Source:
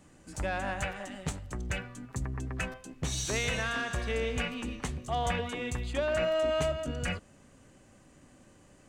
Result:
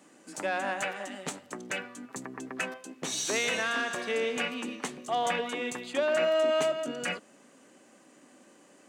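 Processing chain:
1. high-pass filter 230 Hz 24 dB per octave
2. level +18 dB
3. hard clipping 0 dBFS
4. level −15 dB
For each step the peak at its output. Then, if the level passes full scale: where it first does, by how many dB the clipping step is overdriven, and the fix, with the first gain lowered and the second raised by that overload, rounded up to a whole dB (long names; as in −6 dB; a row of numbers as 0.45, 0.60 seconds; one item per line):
−19.5, −1.5, −1.5, −16.5 dBFS
no step passes full scale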